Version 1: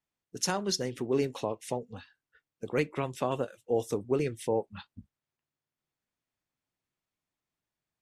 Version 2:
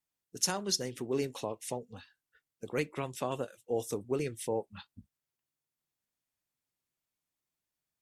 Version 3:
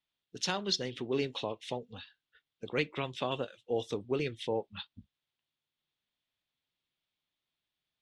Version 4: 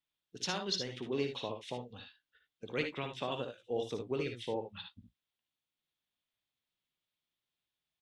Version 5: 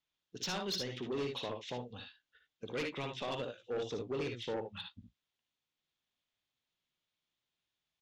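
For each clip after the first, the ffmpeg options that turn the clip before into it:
ffmpeg -i in.wav -af "aemphasis=mode=production:type=cd,volume=-4dB" out.wav
ffmpeg -i in.wav -af "lowpass=frequency=3500:width_type=q:width=3.4" out.wav
ffmpeg -i in.wav -af "aecho=1:1:57|74:0.422|0.335,volume=-4dB" out.wav
ffmpeg -i in.wav -af "volume=31.5dB,asoftclip=hard,volume=-31.5dB,aresample=16000,aresample=44100,asoftclip=type=tanh:threshold=-32.5dB,volume=2dB" out.wav

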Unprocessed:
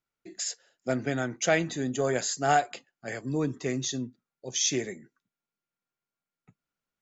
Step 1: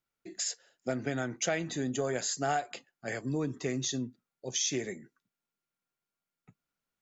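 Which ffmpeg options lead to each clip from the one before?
ffmpeg -i in.wav -af "acompressor=threshold=-29dB:ratio=3" out.wav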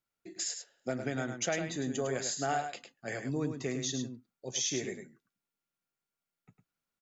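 ffmpeg -i in.wav -af "aecho=1:1:104:0.422,volume=-2dB" out.wav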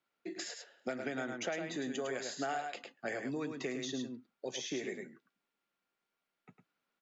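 ffmpeg -i in.wav -filter_complex "[0:a]acrossover=split=190 4200:gain=0.126 1 0.178[link_01][link_02][link_03];[link_01][link_02][link_03]amix=inputs=3:normalize=0,acrossover=split=1500|6200[link_04][link_05][link_06];[link_04]acompressor=threshold=-45dB:ratio=4[link_07];[link_05]acompressor=threshold=-53dB:ratio=4[link_08];[link_06]acompressor=threshold=-58dB:ratio=4[link_09];[link_07][link_08][link_09]amix=inputs=3:normalize=0,volume=7.5dB" out.wav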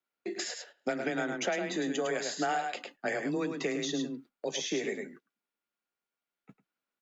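ffmpeg -i in.wav -af "agate=range=-12dB:threshold=-57dB:ratio=16:detection=peak,afreqshift=18,volume=6dB" out.wav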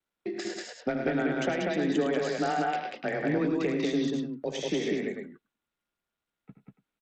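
ffmpeg -i in.wav -af "aemphasis=mode=reproduction:type=bsi,aecho=1:1:75.8|189.5:0.316|0.794" -ar 32000 -c:a sbc -b:a 64k out.sbc

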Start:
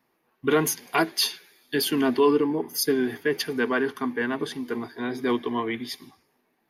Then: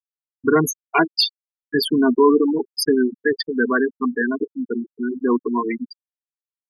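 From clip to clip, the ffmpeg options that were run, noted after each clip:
ffmpeg -i in.wav -af "afftfilt=real='re*gte(hypot(re,im),0.141)':imag='im*gte(hypot(re,im),0.141)':win_size=1024:overlap=0.75,equalizer=frequency=570:width_type=o:width=0.75:gain=-5.5,volume=7.5dB" out.wav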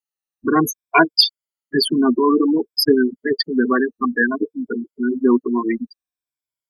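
ffmpeg -i in.wav -af "afftfilt=real='re*pow(10,13/40*sin(2*PI*(1.7*log(max(b,1)*sr/1024/100)/log(2)-(-0.56)*(pts-256)/sr)))':imag='im*pow(10,13/40*sin(2*PI*(1.7*log(max(b,1)*sr/1024/100)/log(2)-(-0.56)*(pts-256)/sr)))':win_size=1024:overlap=0.75,bandreject=frequency=460:width=12,volume=1dB" out.wav

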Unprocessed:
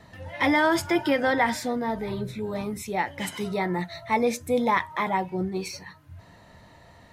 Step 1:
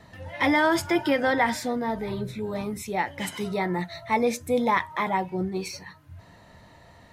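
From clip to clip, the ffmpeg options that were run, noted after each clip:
ffmpeg -i in.wav -af anull out.wav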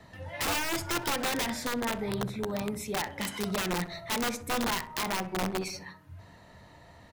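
ffmpeg -i in.wav -filter_complex "[0:a]acrossover=split=190[link_01][link_02];[link_02]acompressor=threshold=-27dB:ratio=2.5[link_03];[link_01][link_03]amix=inputs=2:normalize=0,aeval=exprs='(mod(12.6*val(0)+1,2)-1)/12.6':channel_layout=same,asplit=2[link_04][link_05];[link_05]adelay=64,lowpass=frequency=1300:poles=1,volume=-11dB,asplit=2[link_06][link_07];[link_07]adelay=64,lowpass=frequency=1300:poles=1,volume=0.55,asplit=2[link_08][link_09];[link_09]adelay=64,lowpass=frequency=1300:poles=1,volume=0.55,asplit=2[link_10][link_11];[link_11]adelay=64,lowpass=frequency=1300:poles=1,volume=0.55,asplit=2[link_12][link_13];[link_13]adelay=64,lowpass=frequency=1300:poles=1,volume=0.55,asplit=2[link_14][link_15];[link_15]adelay=64,lowpass=frequency=1300:poles=1,volume=0.55[link_16];[link_04][link_06][link_08][link_10][link_12][link_14][link_16]amix=inputs=7:normalize=0,volume=-2dB" out.wav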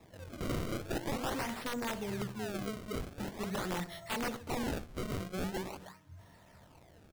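ffmpeg -i in.wav -af "acrusher=samples=29:mix=1:aa=0.000001:lfo=1:lforange=46.4:lforate=0.44,volume=-5.5dB" out.wav

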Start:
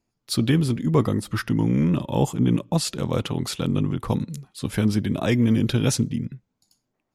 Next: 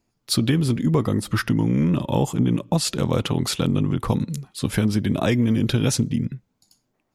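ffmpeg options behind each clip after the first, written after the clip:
ffmpeg -i in.wav -af "acompressor=threshold=-21dB:ratio=6,volume=5dB" out.wav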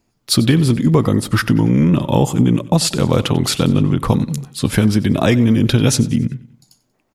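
ffmpeg -i in.wav -af "aecho=1:1:93|186|279|372:0.119|0.0523|0.023|0.0101,volume=6.5dB" out.wav

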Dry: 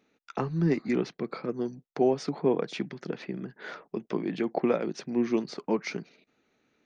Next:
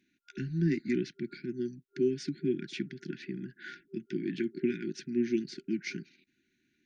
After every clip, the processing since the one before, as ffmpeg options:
ffmpeg -i in.wav -af "afftfilt=real='re*(1-between(b*sr/4096,390,1400))':imag='im*(1-between(b*sr/4096,390,1400))':win_size=4096:overlap=0.75,volume=-2.5dB" out.wav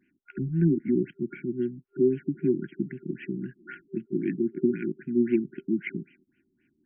ffmpeg -i in.wav -af "acontrast=48,afftfilt=real='re*lt(b*sr/1024,570*pow(3300/570,0.5+0.5*sin(2*PI*3.8*pts/sr)))':imag='im*lt(b*sr/1024,570*pow(3300/570,0.5+0.5*sin(2*PI*3.8*pts/sr)))':win_size=1024:overlap=0.75" out.wav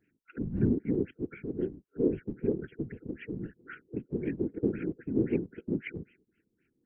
ffmpeg -i in.wav -af "afftfilt=real='hypot(re,im)*cos(2*PI*random(0))':imag='hypot(re,im)*sin(2*PI*random(1))':win_size=512:overlap=0.75,volume=1.5dB" out.wav

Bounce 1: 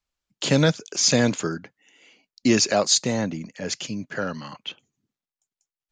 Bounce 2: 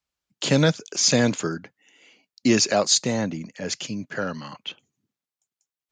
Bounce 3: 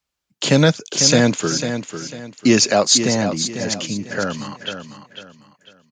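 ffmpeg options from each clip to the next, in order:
ffmpeg -i in.wav -af "highpass=56" out.wav
ffmpeg -i in.wav -af "aecho=1:1:498|996|1494|1992:0.355|0.11|0.0341|0.0106,volume=5dB" out.wav

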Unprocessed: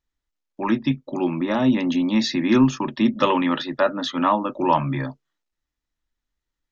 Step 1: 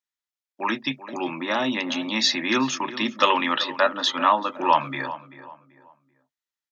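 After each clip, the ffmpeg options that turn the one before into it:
ffmpeg -i in.wav -filter_complex "[0:a]highpass=frequency=1500:poles=1,agate=range=-10dB:threshold=-46dB:ratio=16:detection=peak,asplit=2[link_01][link_02];[link_02]adelay=386,lowpass=frequency=1900:poles=1,volume=-14dB,asplit=2[link_03][link_04];[link_04]adelay=386,lowpass=frequency=1900:poles=1,volume=0.35,asplit=2[link_05][link_06];[link_06]adelay=386,lowpass=frequency=1900:poles=1,volume=0.35[link_07];[link_01][link_03][link_05][link_07]amix=inputs=4:normalize=0,volume=6.5dB" out.wav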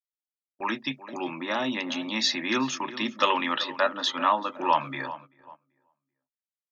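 ffmpeg -i in.wav -af "agate=range=-14dB:threshold=-41dB:ratio=16:detection=peak,volume=-4dB" out.wav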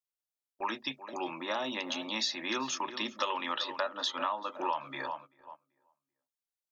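ffmpeg -i in.wav -af "equalizer=frequency=125:width_type=o:width=1:gain=-10,equalizer=frequency=250:width_type=o:width=1:gain=-7,equalizer=frequency=2000:width_type=o:width=1:gain=-6,acompressor=threshold=-29dB:ratio=6" out.wav

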